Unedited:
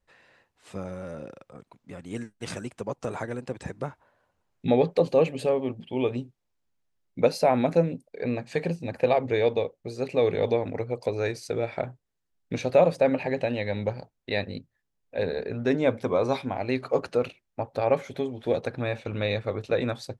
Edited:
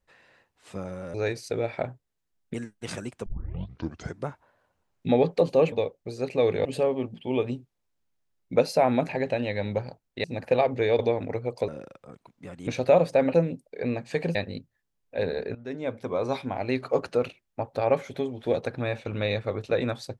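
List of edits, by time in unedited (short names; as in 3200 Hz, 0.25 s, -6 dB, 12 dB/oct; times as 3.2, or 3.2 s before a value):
1.14–2.13 swap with 11.13–12.53
2.85 tape start 0.94 s
7.75–8.76 swap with 13.2–14.35
9.51–10.44 move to 5.31
15.55–16.62 fade in, from -16.5 dB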